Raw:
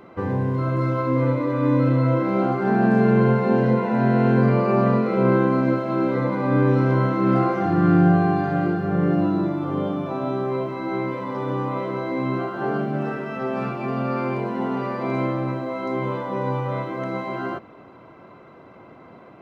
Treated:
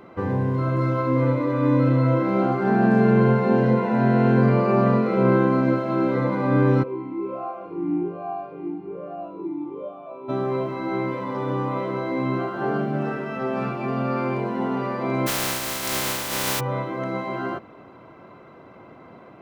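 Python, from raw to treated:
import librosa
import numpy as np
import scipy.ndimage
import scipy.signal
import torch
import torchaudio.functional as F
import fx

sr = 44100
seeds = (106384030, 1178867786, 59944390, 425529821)

y = fx.vowel_sweep(x, sr, vowels='a-u', hz=1.2, at=(6.82, 10.28), fade=0.02)
y = fx.spec_flatten(y, sr, power=0.2, at=(15.26, 16.59), fade=0.02)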